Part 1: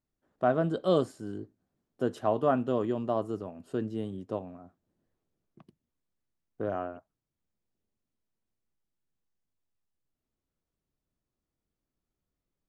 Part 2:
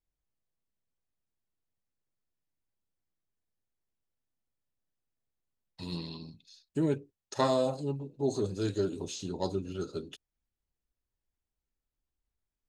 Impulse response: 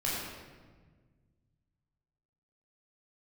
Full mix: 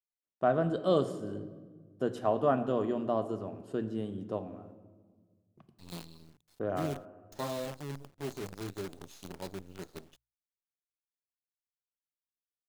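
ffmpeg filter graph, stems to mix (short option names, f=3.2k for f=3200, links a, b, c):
-filter_complex "[0:a]agate=range=-33dB:threshold=-55dB:ratio=3:detection=peak,volume=-2.5dB,asplit=2[a][b];[b]volume=-16.5dB[c];[1:a]adynamicequalizer=threshold=0.00398:dfrequency=150:dqfactor=2.4:tfrequency=150:tqfactor=2.4:attack=5:release=100:ratio=0.375:range=3:mode=boostabove:tftype=bell,acrusher=bits=6:dc=4:mix=0:aa=0.000001,volume=-10dB[d];[2:a]atrim=start_sample=2205[e];[c][e]afir=irnorm=-1:irlink=0[f];[a][d][f]amix=inputs=3:normalize=0,bandreject=f=60:t=h:w=6,bandreject=f=120:t=h:w=6"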